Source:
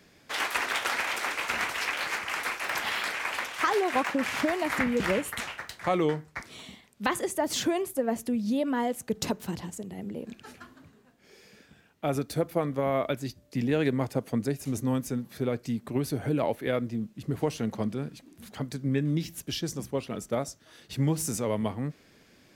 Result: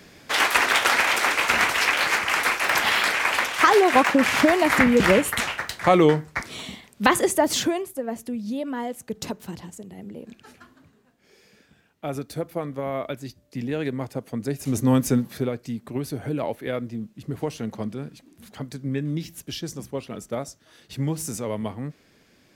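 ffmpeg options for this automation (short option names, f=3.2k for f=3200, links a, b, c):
-af "volume=22dB,afade=t=out:st=7.3:d=0.56:silence=0.281838,afade=t=in:st=14.38:d=0.75:silence=0.237137,afade=t=out:st=15.13:d=0.4:silence=0.281838"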